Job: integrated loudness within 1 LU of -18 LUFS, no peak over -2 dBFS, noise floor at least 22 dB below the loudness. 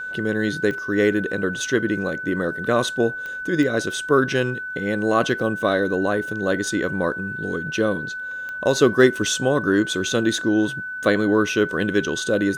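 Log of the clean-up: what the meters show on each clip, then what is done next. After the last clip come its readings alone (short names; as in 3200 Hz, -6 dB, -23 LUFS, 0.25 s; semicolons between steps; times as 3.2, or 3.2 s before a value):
clicks 4; steady tone 1500 Hz; tone level -28 dBFS; loudness -21.5 LUFS; peak -1.5 dBFS; loudness target -18.0 LUFS
-> de-click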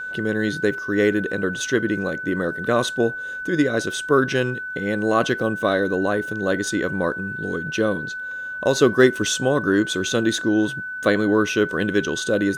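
clicks 0; steady tone 1500 Hz; tone level -28 dBFS
-> notch 1500 Hz, Q 30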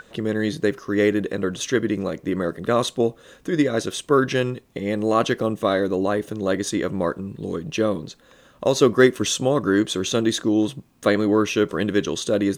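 steady tone none; loudness -22.0 LUFS; peak -2.0 dBFS; loudness target -18.0 LUFS
-> gain +4 dB; limiter -2 dBFS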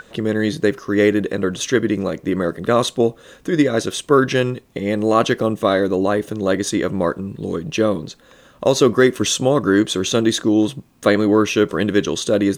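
loudness -18.5 LUFS; peak -2.0 dBFS; noise floor -50 dBFS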